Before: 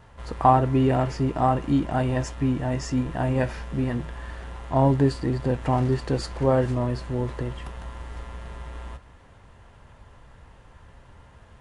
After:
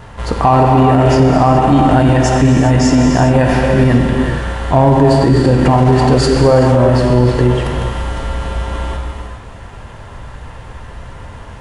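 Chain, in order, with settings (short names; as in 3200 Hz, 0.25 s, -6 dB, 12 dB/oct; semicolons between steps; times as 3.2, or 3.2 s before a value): in parallel at -6.5 dB: hard clip -16 dBFS, distortion -14 dB; on the sum: non-linear reverb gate 0.44 s flat, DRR 1 dB; maximiser +13.5 dB; gain -1 dB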